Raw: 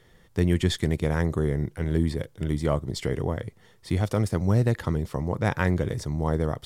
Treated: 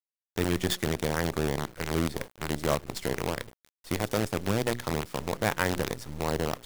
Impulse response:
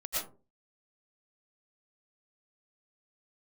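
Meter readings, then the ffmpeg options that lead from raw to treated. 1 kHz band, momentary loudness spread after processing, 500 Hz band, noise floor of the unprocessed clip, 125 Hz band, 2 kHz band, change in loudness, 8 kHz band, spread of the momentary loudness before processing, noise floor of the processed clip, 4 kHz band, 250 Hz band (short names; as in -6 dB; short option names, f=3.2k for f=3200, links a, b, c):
+1.5 dB, 6 LU, -2.0 dB, -57 dBFS, -9.0 dB, +1.5 dB, -4.0 dB, +5.0 dB, 7 LU, under -85 dBFS, +2.5 dB, -4.5 dB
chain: -af "highpass=f=260:p=1,bandreject=f=60:t=h:w=6,bandreject=f=120:t=h:w=6,bandreject=f=180:t=h:w=6,bandreject=f=240:t=h:w=6,bandreject=f=300:t=h:w=6,bandreject=f=360:t=h:w=6,bandreject=f=420:t=h:w=6,acrusher=bits=5:dc=4:mix=0:aa=0.000001"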